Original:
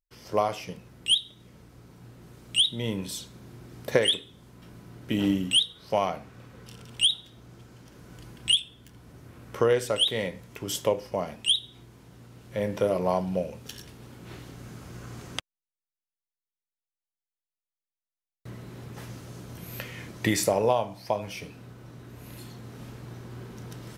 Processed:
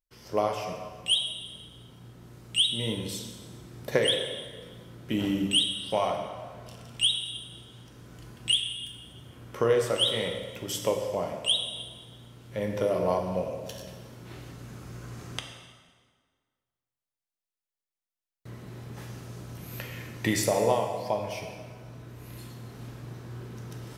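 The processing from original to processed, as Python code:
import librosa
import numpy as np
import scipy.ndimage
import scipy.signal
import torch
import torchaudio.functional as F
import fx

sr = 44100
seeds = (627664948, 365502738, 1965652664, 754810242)

y = fx.rev_plate(x, sr, seeds[0], rt60_s=1.7, hf_ratio=0.8, predelay_ms=0, drr_db=3.0)
y = y * librosa.db_to_amplitude(-2.5)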